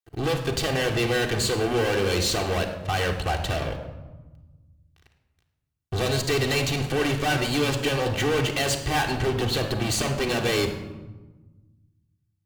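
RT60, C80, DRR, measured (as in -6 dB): 1.2 s, 10.0 dB, 1.0 dB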